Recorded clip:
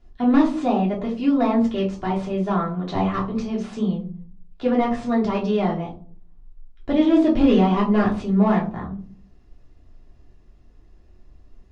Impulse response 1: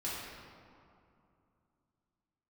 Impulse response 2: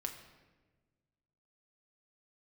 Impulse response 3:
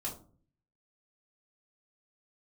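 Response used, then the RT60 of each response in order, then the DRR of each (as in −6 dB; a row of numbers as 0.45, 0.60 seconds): 3; 2.6, 1.3, 0.45 seconds; −9.0, 2.5, −5.5 decibels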